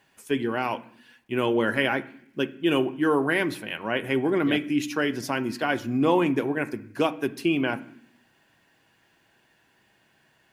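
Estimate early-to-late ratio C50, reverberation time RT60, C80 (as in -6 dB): 17.5 dB, 0.70 s, 21.0 dB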